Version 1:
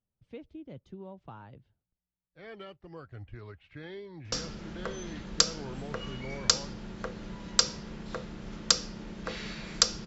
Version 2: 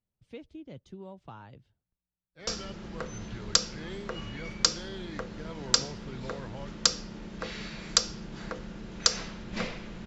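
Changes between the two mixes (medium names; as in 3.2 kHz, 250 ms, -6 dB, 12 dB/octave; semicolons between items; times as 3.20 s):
speech: remove low-pass 2.3 kHz 6 dB/octave; background: entry -1.85 s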